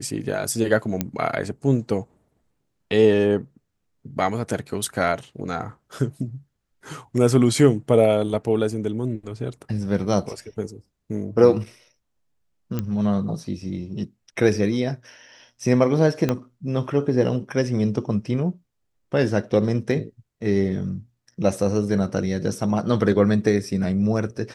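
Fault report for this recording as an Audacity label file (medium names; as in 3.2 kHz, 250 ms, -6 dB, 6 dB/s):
1.010000	1.010000	pop -8 dBFS
12.790000	12.790000	pop -13 dBFS
16.290000	16.290000	pop -9 dBFS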